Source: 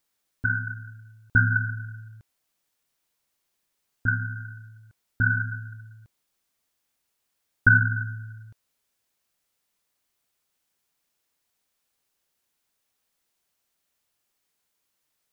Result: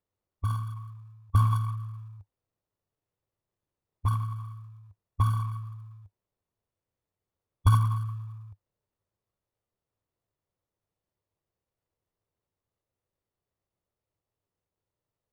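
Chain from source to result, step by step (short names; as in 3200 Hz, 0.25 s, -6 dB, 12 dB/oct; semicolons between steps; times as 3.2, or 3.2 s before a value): median filter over 41 samples; fifteen-band EQ 100 Hz +9 dB, 250 Hz -6 dB, 1000 Hz +8 dB; formant shift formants -5 st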